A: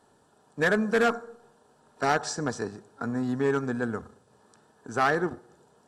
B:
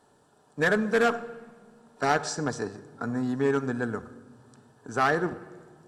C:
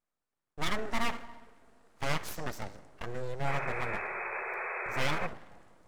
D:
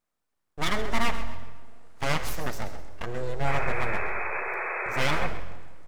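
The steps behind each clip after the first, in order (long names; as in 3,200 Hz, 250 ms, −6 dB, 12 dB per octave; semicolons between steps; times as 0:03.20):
rectangular room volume 2,300 cubic metres, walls mixed, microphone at 0.36 metres
full-wave rectification; sound drawn into the spectrogram noise, 0:03.47–0:05.27, 350–2,600 Hz −32 dBFS; noise gate with hold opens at −48 dBFS; level −5 dB
on a send: echo with shifted repeats 130 ms, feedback 33%, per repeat −44 Hz, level −13 dB; on the sum: comb and all-pass reverb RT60 1.4 s, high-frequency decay 0.95×, pre-delay 30 ms, DRR 16 dB; level +5 dB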